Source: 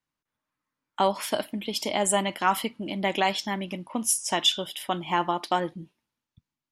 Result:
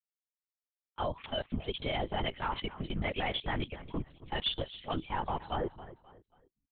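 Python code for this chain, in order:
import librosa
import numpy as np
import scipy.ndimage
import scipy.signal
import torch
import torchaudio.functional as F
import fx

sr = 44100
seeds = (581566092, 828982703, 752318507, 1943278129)

y = fx.bin_expand(x, sr, power=1.5)
y = fx.highpass(y, sr, hz=83.0, slope=6)
y = fx.low_shelf(y, sr, hz=150.0, db=-6.5)
y = fx.level_steps(y, sr, step_db=19)
y = np.clip(y, -10.0 ** (-30.0 / 20.0), 10.0 ** (-30.0 / 20.0))
y = fx.echo_feedback(y, sr, ms=268, feedback_pct=36, wet_db=-16.0)
y = fx.lpc_vocoder(y, sr, seeds[0], excitation='whisper', order=8)
y = y * librosa.db_to_amplitude(6.0)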